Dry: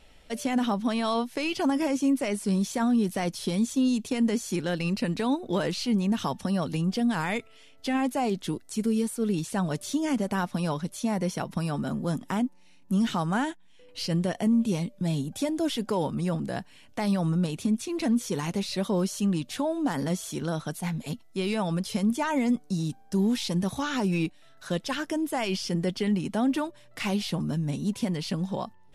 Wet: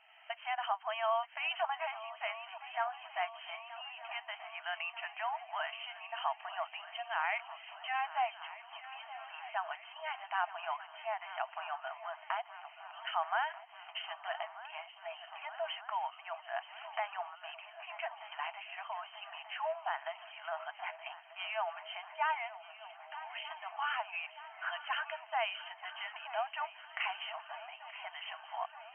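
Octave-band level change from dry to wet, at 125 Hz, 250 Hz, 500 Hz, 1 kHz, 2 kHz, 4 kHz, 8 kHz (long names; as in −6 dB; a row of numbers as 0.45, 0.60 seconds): below −40 dB, below −40 dB, −11.5 dB, −2.0 dB, −2.0 dB, −7.0 dB, below −40 dB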